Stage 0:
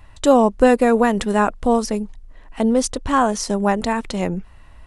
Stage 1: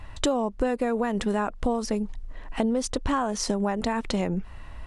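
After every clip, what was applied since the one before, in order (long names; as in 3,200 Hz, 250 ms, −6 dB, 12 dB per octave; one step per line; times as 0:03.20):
high-shelf EQ 9,400 Hz −9.5 dB
in parallel at −1 dB: brickwall limiter −13 dBFS, peak gain reduction 12 dB
on the sum: downward compressor 6 to 1, threshold −21 dBFS, peak gain reduction 14 dB
level −1.5 dB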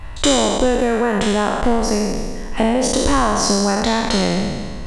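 peak hold with a decay on every bin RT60 1.69 s
level +6 dB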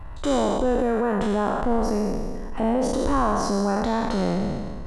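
flat-topped bell 4,200 Hz −10 dB 2.6 octaves
transient designer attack −5 dB, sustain +5 dB
high-shelf EQ 9,400 Hz −5.5 dB
level −5 dB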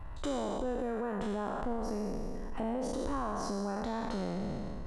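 downward compressor 2.5 to 1, threshold −27 dBFS, peak gain reduction 7.5 dB
level −6.5 dB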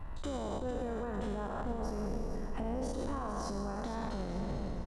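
sub-octave generator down 2 octaves, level −1 dB
brickwall limiter −28.5 dBFS, peak gain reduction 7.5 dB
repeating echo 452 ms, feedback 44%, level −10 dB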